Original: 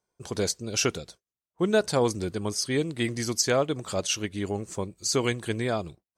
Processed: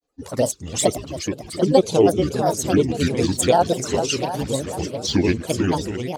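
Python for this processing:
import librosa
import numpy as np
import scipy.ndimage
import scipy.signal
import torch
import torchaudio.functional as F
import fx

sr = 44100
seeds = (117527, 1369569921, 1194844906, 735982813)

y = fx.spec_quant(x, sr, step_db=15)
y = fx.peak_eq(y, sr, hz=440.0, db=5.5, octaves=0.69)
y = fx.env_flanger(y, sr, rest_ms=3.1, full_db=-20.0)
y = fx.echo_swing(y, sr, ms=724, ratio=1.5, feedback_pct=38, wet_db=-7.5)
y = fx.granulator(y, sr, seeds[0], grain_ms=100.0, per_s=20.0, spray_ms=14.0, spread_st=7)
y = F.gain(torch.from_numpy(y), 7.5).numpy()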